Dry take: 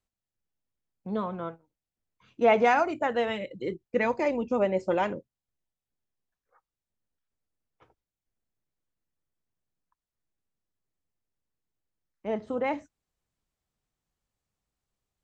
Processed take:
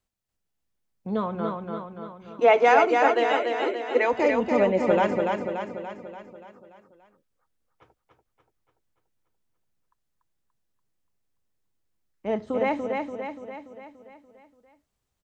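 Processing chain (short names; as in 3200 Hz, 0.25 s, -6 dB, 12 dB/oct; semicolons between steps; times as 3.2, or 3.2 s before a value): 2.4–4.13 steep high-pass 250 Hz 96 dB/oct; on a send: feedback echo 0.289 s, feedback 55%, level -4 dB; on the sum: gain +3.5 dB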